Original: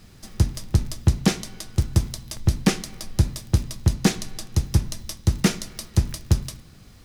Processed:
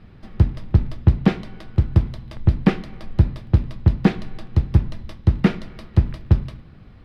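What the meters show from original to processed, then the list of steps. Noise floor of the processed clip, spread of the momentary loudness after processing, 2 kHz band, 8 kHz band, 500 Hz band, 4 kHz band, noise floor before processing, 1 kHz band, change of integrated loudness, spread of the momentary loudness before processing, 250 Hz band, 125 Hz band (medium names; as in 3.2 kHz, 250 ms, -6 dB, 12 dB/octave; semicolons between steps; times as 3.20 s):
-45 dBFS, 12 LU, -0.5 dB, under -20 dB, +3.0 dB, -9.0 dB, -48 dBFS, +2.0 dB, +3.5 dB, 11 LU, +3.5 dB, +4.0 dB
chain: distance through air 440 m; trim +4 dB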